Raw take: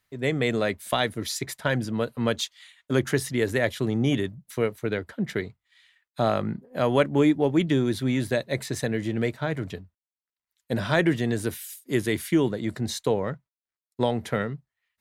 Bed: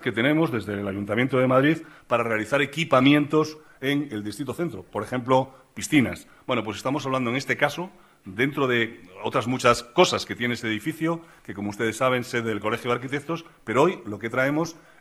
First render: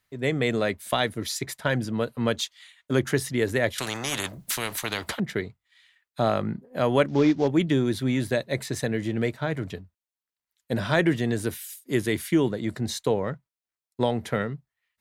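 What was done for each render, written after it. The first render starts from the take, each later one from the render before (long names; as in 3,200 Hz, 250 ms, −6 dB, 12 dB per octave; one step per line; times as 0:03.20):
0:03.78–0:05.20: every bin compressed towards the loudest bin 4 to 1
0:07.08–0:07.48: variable-slope delta modulation 32 kbit/s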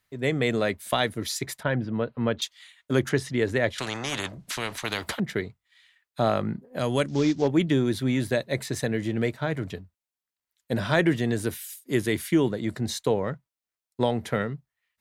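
0:01.63–0:02.42: high-frequency loss of the air 330 metres
0:03.09–0:04.85: high-frequency loss of the air 58 metres
0:06.79–0:07.42: drawn EQ curve 120 Hz 0 dB, 820 Hz −6 dB, 2,200 Hz −3 dB, 10,000 Hz +11 dB, 15,000 Hz −16 dB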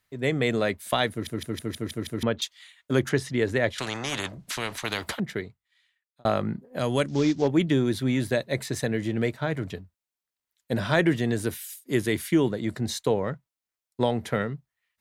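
0:01.11: stutter in place 0.16 s, 7 plays
0:05.02–0:06.25: fade out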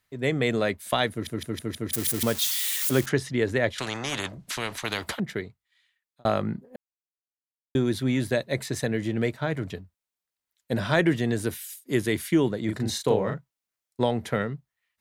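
0:01.93–0:03.06: spike at every zero crossing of −19.5 dBFS
0:06.76–0:07.75: silence
0:12.65–0:14.01: double-tracking delay 37 ms −4 dB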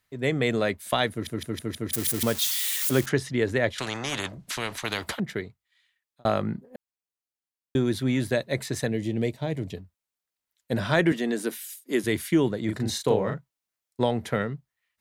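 0:08.89–0:09.77: parametric band 1,400 Hz −14.5 dB 0.81 octaves
0:11.12–0:12.04: Butterworth high-pass 190 Hz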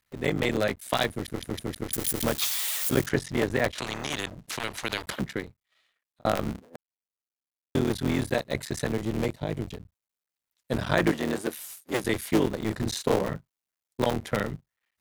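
sub-harmonics by changed cycles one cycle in 3, muted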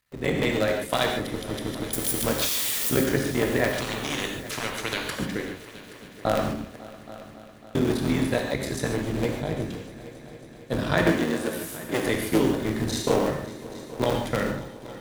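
echo machine with several playback heads 275 ms, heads all three, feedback 60%, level −21 dB
reverb whose tail is shaped and stops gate 170 ms flat, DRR 1.5 dB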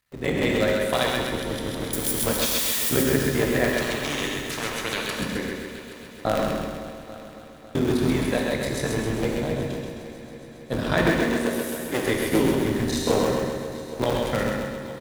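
repeating echo 131 ms, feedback 56%, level −4 dB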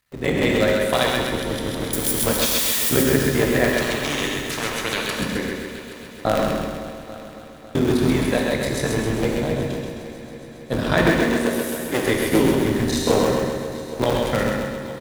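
level +3.5 dB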